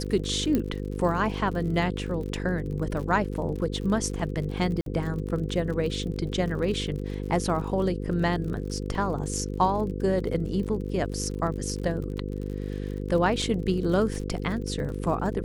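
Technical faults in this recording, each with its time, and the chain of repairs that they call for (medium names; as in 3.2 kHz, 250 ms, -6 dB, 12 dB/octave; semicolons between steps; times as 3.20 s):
buzz 50 Hz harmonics 10 -32 dBFS
crackle 52 per s -35 dBFS
0.55 s: pop -13 dBFS
4.81–4.86 s: dropout 52 ms
13.42 s: dropout 4 ms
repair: de-click; de-hum 50 Hz, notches 10; interpolate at 4.81 s, 52 ms; interpolate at 13.42 s, 4 ms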